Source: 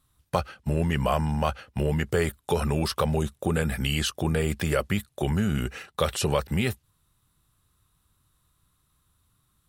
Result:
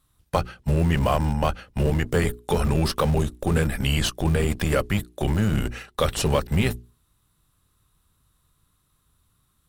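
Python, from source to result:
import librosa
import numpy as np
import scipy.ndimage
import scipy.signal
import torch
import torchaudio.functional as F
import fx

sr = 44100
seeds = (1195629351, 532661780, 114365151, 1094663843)

p1 = fx.octave_divider(x, sr, octaves=1, level_db=-3.0)
p2 = fx.hum_notches(p1, sr, base_hz=60, count=7)
p3 = fx.schmitt(p2, sr, flips_db=-23.0)
p4 = p2 + (p3 * librosa.db_to_amplitude(-7.5))
y = p4 * librosa.db_to_amplitude(1.5)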